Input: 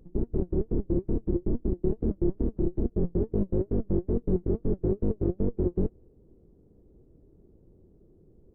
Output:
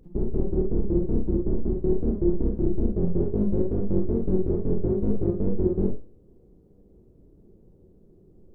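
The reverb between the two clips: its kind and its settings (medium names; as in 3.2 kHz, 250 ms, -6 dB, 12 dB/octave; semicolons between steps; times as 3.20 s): Schroeder reverb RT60 0.31 s, combs from 31 ms, DRR 2 dB; trim +1 dB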